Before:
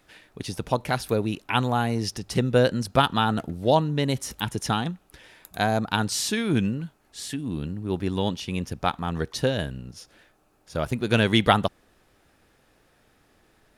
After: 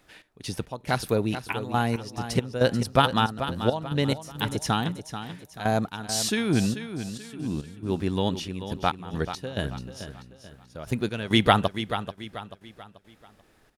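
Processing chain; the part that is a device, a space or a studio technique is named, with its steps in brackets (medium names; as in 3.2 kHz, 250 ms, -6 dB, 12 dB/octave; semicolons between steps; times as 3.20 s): trance gate with a delay (trance gate "x.x.xxx." 69 bpm -12 dB; feedback delay 436 ms, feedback 39%, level -10.5 dB)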